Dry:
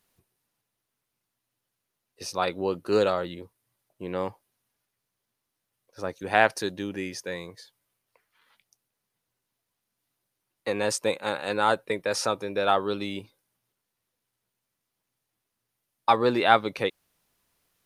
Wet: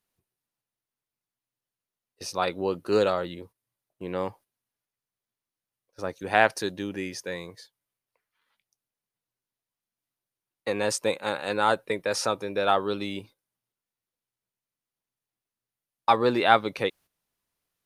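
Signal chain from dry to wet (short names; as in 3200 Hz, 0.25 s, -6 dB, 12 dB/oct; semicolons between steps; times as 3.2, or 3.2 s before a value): gate -49 dBFS, range -10 dB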